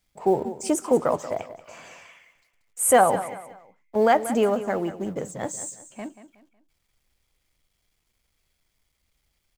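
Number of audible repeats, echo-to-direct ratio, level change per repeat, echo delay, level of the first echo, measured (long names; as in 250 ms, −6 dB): 3, −13.0 dB, −9.0 dB, 184 ms, −13.5 dB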